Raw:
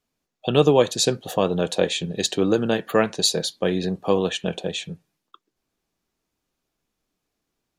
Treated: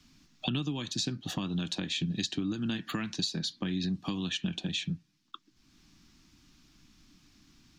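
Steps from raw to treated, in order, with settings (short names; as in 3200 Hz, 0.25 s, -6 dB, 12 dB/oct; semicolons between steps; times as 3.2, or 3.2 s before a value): compressor 4:1, threshold -25 dBFS, peak gain reduction 12.5 dB; EQ curve 300 Hz 0 dB, 470 Hz -24 dB, 1100 Hz -8 dB, 5400 Hz 0 dB, 10000 Hz -15 dB; three-band squash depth 70%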